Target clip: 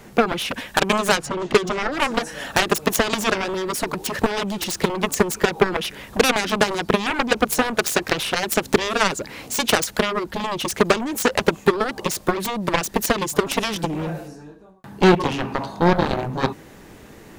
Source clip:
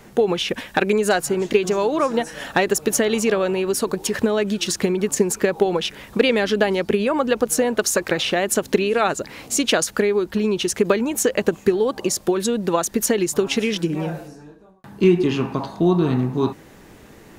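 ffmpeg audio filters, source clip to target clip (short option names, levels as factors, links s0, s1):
-filter_complex "[0:a]asettb=1/sr,asplit=3[s0][s1][s2];[s0]atrim=end=1.174[s3];[s1]atrim=start=1.17:end=1.92,asetpts=PTS-STARTPTS,afade=t=in:d=0.004:c=qsin,afade=t=out:st=0.746:d=0.004:c=qsin,adynamicsmooth=sensitivity=1:basefreq=5000[s4];[s2]atrim=start=1.916[s5];[s3][s4]acrossfade=d=0.004:c1=hsin:c2=qsin[s6];[s6][s5]acrossfade=d=0.004:c1=qsin:c2=hsin,aeval=exprs='0.596*(cos(1*acos(clip(val(0)/0.596,-1,1)))-cos(1*PI/2))+0.188*(cos(7*acos(clip(val(0)/0.596,-1,1)))-cos(7*PI/2))':c=same"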